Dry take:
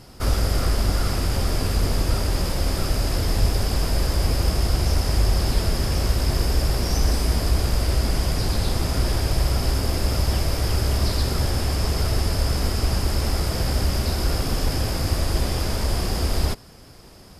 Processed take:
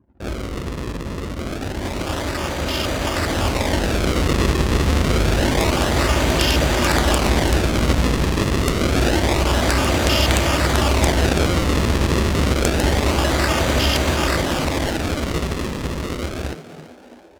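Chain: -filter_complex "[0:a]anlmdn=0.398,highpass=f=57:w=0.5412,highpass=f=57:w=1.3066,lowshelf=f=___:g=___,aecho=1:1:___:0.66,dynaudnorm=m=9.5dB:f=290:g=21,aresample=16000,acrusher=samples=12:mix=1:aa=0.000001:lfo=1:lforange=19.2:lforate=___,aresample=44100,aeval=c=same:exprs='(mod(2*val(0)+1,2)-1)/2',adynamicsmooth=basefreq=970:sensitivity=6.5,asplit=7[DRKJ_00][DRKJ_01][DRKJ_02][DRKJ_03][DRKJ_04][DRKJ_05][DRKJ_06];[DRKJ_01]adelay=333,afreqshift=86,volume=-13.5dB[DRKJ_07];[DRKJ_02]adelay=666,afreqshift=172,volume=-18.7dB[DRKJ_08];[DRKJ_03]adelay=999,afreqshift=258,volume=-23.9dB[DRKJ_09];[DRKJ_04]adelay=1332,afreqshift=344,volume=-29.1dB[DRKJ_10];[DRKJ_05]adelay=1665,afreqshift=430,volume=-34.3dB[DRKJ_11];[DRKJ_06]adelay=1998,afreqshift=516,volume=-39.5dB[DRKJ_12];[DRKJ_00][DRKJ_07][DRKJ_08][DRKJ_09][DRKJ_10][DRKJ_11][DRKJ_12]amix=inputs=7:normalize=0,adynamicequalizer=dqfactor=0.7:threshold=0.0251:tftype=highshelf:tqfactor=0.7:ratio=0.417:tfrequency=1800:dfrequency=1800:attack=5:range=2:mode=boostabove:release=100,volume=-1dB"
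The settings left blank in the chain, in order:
140, -8, 3.3, 0.27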